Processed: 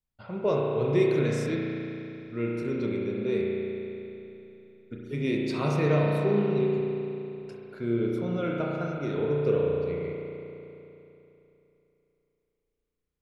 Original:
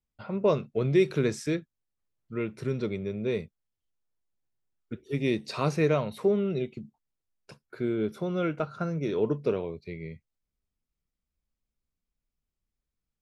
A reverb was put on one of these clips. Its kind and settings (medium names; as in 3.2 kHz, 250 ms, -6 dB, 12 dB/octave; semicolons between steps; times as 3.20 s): spring tank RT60 3.1 s, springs 34 ms, chirp 40 ms, DRR -3 dB; trim -3.5 dB